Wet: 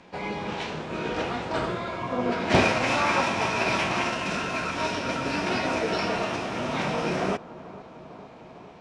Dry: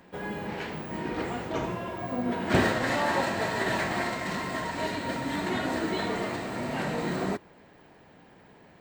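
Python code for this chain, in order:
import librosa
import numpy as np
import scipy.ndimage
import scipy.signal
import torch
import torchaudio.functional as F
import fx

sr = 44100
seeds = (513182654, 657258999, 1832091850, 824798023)

y = scipy.signal.sosfilt(scipy.signal.butter(4, 5900.0, 'lowpass', fs=sr, output='sos'), x)
y = fx.formant_shift(y, sr, semitones=5)
y = fx.echo_bbd(y, sr, ms=452, stages=4096, feedback_pct=77, wet_db=-18.0)
y = y * librosa.db_to_amplitude(3.0)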